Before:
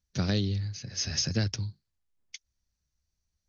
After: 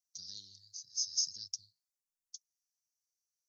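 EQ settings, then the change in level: inverse Chebyshev high-pass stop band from 2.7 kHz, stop band 40 dB; 0.0 dB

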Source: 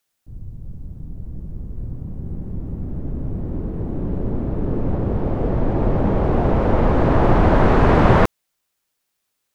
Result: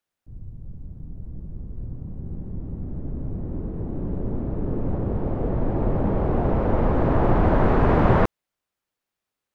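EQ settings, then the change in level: treble shelf 3.2 kHz -10.5 dB; -4.0 dB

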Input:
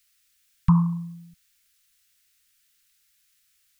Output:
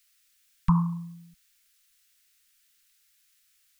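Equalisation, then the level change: peaking EQ 100 Hz -14.5 dB 0.93 oct; 0.0 dB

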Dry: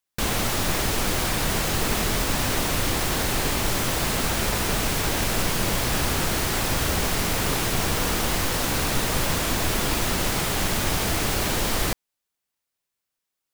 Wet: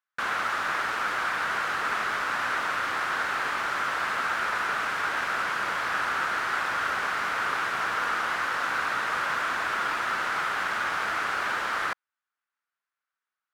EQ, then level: band-pass filter 1.4 kHz, Q 3.3; +8.0 dB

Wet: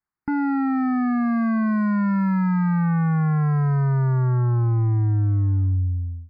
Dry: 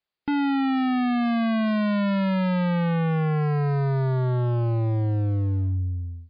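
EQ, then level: Butterworth band-stop 3.3 kHz, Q 1.5; treble shelf 3 kHz -10.5 dB; static phaser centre 1.3 kHz, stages 4; +4.5 dB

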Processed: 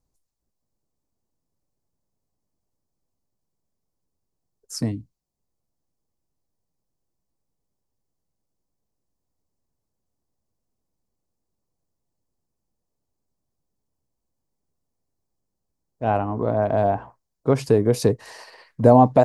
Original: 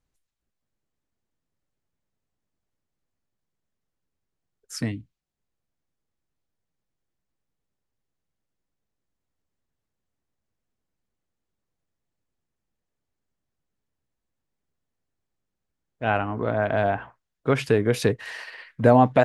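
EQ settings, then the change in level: high-order bell 2.2 kHz -12 dB; +3.0 dB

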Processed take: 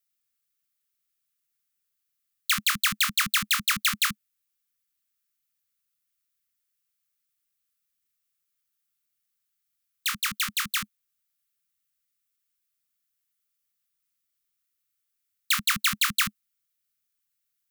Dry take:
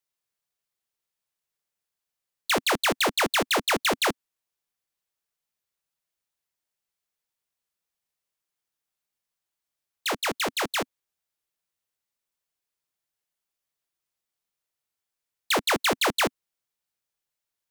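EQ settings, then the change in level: Chebyshev band-stop 210–1200 Hz, order 4; treble shelf 9.8 kHz +11.5 dB; 0.0 dB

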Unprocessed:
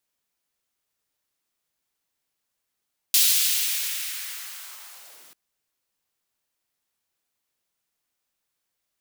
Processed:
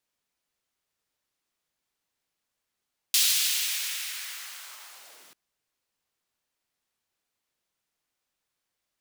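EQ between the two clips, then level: treble shelf 9.1 kHz -7.5 dB; 0.0 dB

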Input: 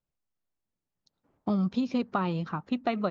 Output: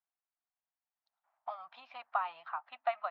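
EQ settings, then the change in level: elliptic high-pass 700 Hz, stop band 40 dB; distance through air 480 m; +1.0 dB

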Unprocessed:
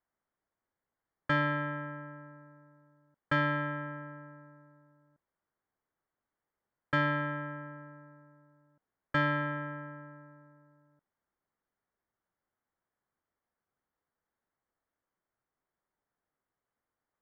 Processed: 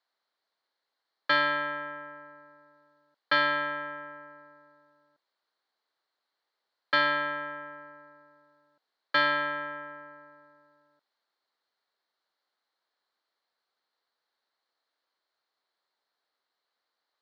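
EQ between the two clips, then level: high-pass 480 Hz 12 dB/octave; resonant low-pass 4.2 kHz, resonance Q 7.4; +4.5 dB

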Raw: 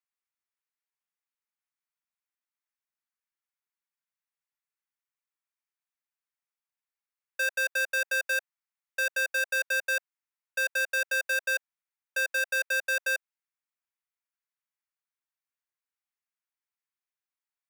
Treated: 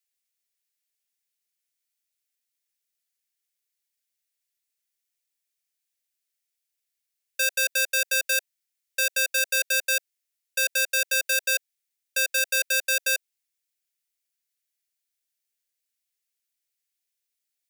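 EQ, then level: treble shelf 2.1 kHz +10.5 dB; static phaser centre 430 Hz, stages 4; +2.0 dB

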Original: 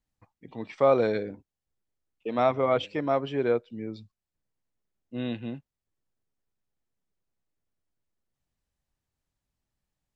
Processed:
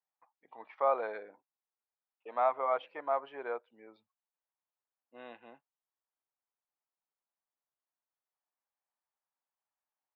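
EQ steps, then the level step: ladder band-pass 1.1 kHz, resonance 35%; distance through air 150 m; +7.5 dB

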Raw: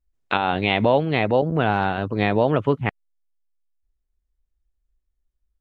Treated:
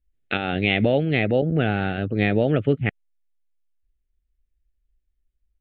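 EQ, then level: distance through air 58 m; static phaser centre 2.4 kHz, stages 4; +2.0 dB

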